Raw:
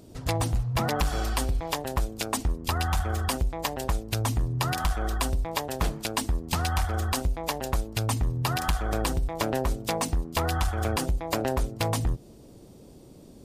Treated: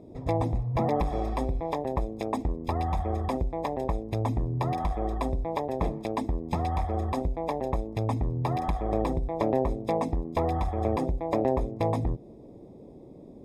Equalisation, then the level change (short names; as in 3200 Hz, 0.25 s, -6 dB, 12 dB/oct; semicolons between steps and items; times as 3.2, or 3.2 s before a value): running mean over 30 samples; low shelf 190 Hz -11 dB; +7.0 dB